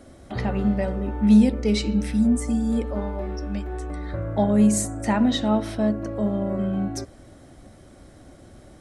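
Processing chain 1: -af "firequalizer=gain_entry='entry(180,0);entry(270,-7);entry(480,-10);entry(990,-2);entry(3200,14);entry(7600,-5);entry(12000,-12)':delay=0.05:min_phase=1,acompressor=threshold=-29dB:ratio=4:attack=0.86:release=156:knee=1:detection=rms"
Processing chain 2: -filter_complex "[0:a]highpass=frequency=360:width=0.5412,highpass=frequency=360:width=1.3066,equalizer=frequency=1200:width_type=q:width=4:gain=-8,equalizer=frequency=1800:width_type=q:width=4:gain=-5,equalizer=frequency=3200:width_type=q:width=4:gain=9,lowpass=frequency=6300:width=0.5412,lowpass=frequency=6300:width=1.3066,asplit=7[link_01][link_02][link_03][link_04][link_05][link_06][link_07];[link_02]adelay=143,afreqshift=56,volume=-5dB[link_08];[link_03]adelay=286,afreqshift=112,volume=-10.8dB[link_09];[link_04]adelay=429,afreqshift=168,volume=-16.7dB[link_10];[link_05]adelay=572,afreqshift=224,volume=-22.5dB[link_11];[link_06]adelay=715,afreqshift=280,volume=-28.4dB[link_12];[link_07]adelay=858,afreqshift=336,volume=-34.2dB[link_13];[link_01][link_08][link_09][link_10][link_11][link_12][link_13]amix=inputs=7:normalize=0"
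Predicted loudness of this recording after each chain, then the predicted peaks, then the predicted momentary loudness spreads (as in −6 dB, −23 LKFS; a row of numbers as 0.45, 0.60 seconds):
−34.0, −29.5 LKFS; −21.5, −11.5 dBFS; 17, 12 LU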